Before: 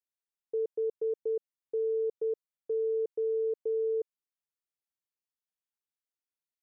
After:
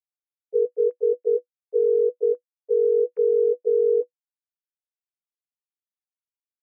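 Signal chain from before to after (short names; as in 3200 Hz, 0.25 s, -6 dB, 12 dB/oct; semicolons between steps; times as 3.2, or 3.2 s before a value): sine-wave speech; small resonant body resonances 350/490 Hz, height 11 dB, ringing for 80 ms; gain +6 dB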